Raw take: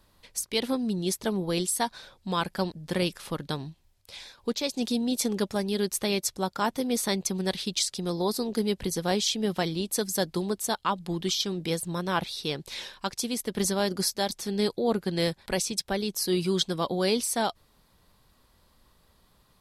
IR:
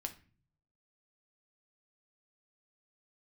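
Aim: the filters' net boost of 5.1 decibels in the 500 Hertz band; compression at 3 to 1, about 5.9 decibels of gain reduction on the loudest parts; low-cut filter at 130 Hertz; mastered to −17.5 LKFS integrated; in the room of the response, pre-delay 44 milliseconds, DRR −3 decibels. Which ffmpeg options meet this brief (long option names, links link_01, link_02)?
-filter_complex "[0:a]highpass=130,equalizer=frequency=500:width_type=o:gain=6.5,acompressor=threshold=-26dB:ratio=3,asplit=2[link_01][link_02];[1:a]atrim=start_sample=2205,adelay=44[link_03];[link_02][link_03]afir=irnorm=-1:irlink=0,volume=4.5dB[link_04];[link_01][link_04]amix=inputs=2:normalize=0,volume=8dB"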